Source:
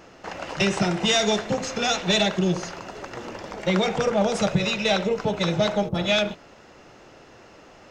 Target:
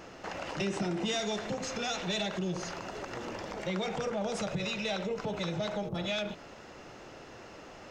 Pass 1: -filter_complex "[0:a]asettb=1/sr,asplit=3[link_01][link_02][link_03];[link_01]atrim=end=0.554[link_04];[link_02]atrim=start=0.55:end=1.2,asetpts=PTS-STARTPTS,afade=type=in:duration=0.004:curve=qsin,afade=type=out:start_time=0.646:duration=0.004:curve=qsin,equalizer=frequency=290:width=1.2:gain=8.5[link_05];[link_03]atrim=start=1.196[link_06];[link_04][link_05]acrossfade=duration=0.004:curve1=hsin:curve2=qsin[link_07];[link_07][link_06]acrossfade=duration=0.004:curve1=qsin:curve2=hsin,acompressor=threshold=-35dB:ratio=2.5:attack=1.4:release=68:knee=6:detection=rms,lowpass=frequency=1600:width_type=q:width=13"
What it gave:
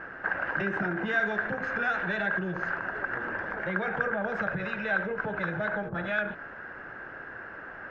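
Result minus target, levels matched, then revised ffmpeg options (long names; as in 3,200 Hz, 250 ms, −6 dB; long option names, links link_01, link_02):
2,000 Hz band +9.0 dB
-filter_complex "[0:a]asettb=1/sr,asplit=3[link_01][link_02][link_03];[link_01]atrim=end=0.554[link_04];[link_02]atrim=start=0.55:end=1.2,asetpts=PTS-STARTPTS,afade=type=in:duration=0.004:curve=qsin,afade=type=out:start_time=0.646:duration=0.004:curve=qsin,equalizer=frequency=290:width=1.2:gain=8.5[link_05];[link_03]atrim=start=1.196[link_06];[link_04][link_05]acrossfade=duration=0.004:curve1=hsin:curve2=qsin[link_07];[link_07][link_06]acrossfade=duration=0.004:curve1=qsin:curve2=hsin,acompressor=threshold=-35dB:ratio=2.5:attack=1.4:release=68:knee=6:detection=rms"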